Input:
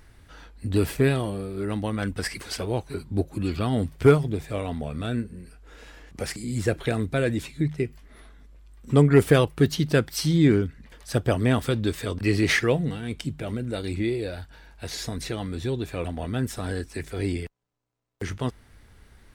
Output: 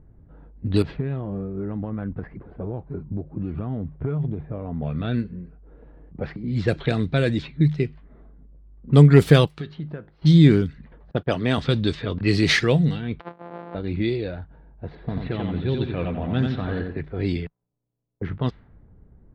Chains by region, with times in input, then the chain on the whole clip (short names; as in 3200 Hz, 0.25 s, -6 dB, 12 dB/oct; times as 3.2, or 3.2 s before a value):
0.82–4.82 compressor, threshold -26 dBFS + tape spacing loss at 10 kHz 34 dB
9.46–10.22 low shelf 430 Hz -10 dB + compressor, threshold -28 dBFS + resonator 51 Hz, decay 0.36 s, mix 50%
11.11–11.58 gate -31 dBFS, range -24 dB + low shelf 160 Hz -11.5 dB
13.2–13.75 sample sorter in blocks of 256 samples + HPF 560 Hz
14.95–16.97 inverse Chebyshev low-pass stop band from 8900 Hz, stop band 50 dB + lo-fi delay 89 ms, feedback 35%, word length 9-bit, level -4 dB
whole clip: low-pass opened by the level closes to 2300 Hz, open at -16 dBFS; fifteen-band EQ 160 Hz +8 dB, 4000 Hz +8 dB, 10000 Hz -6 dB; low-pass opened by the level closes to 500 Hz, open at -16.5 dBFS; gain +1 dB